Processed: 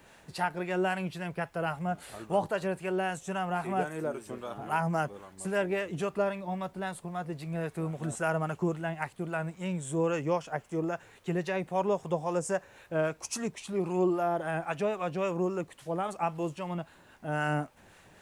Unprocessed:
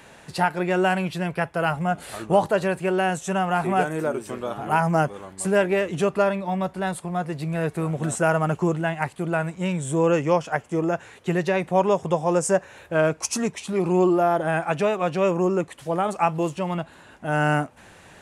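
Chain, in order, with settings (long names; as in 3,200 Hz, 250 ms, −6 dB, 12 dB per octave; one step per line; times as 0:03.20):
two-band tremolo in antiphase 3.7 Hz, depth 50%, crossover 770 Hz
background noise pink −63 dBFS
level −6.5 dB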